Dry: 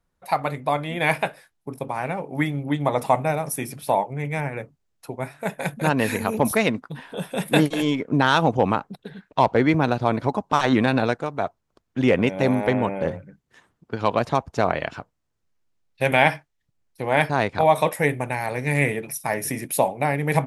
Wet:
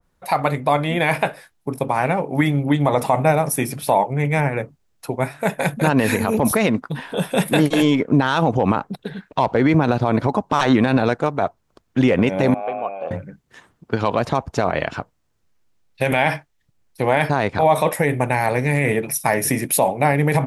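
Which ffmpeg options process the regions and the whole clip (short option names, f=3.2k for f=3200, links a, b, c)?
-filter_complex "[0:a]asettb=1/sr,asplit=3[a][b][c];[a]atrim=end=12.544[d];[b]atrim=start=12.54:end=13.11,asetpts=PTS-STARTPTS,afade=t=in:d=0.004:c=qsin,afade=t=out:st=0.566:d=0.004:c=qsin,acrossover=split=3100[e][f];[f]acompressor=threshold=-52dB:ratio=4:attack=1:release=60[g];[e][g]amix=inputs=2:normalize=0,asplit=3[h][i][j];[h]bandpass=f=730:t=q:w=8,volume=0dB[k];[i]bandpass=f=1.09k:t=q:w=8,volume=-6dB[l];[j]bandpass=f=2.44k:t=q:w=8,volume=-9dB[m];[k][l][m]amix=inputs=3:normalize=0,highshelf=f=4.7k:g=11.5[n];[c]atrim=start=13.106[o];[d][n]acrossfade=d=0.004:c1=hsin:c2=qsin[p];[p][o]acrossfade=d=0.004:c1=qsin:c2=hsin,alimiter=level_in=13dB:limit=-1dB:release=50:level=0:latency=1,adynamicequalizer=threshold=0.0631:dfrequency=1800:dqfactor=0.7:tfrequency=1800:tqfactor=0.7:attack=5:release=100:ratio=0.375:range=1.5:mode=cutabove:tftype=highshelf,volume=-5dB"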